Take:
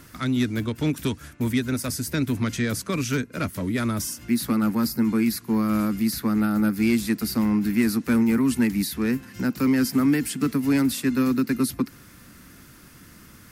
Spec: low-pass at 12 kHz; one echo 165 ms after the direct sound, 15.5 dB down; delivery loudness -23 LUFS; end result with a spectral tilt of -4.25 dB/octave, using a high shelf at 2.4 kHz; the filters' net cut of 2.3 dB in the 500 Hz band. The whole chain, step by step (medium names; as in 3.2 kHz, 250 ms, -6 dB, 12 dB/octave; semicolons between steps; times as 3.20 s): low-pass 12 kHz; peaking EQ 500 Hz -3.5 dB; treble shelf 2.4 kHz +7 dB; delay 165 ms -15.5 dB; trim +0.5 dB